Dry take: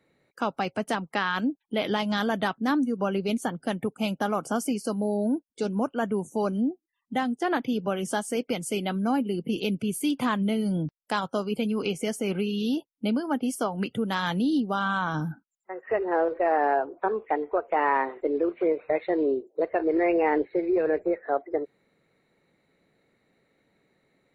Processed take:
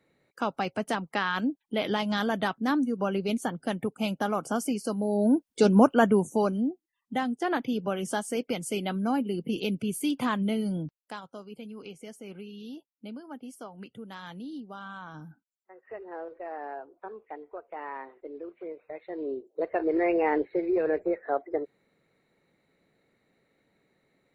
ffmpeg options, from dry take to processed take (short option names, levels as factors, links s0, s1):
-af "volume=12.6,afade=t=in:st=5.07:d=0.7:silence=0.298538,afade=t=out:st=5.77:d=0.81:silence=0.281838,afade=t=out:st=10.58:d=0.63:silence=0.223872,afade=t=in:st=19.03:d=0.78:silence=0.223872"